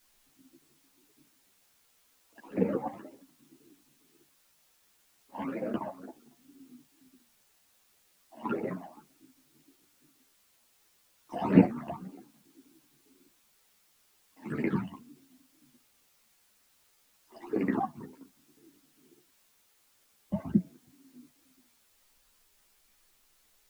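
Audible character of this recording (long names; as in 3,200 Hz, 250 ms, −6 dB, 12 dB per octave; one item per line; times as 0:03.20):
sample-and-hold tremolo 3.5 Hz
phaser sweep stages 12, 2 Hz, lowest notch 400–1,200 Hz
a quantiser's noise floor 12 bits, dither triangular
a shimmering, thickened sound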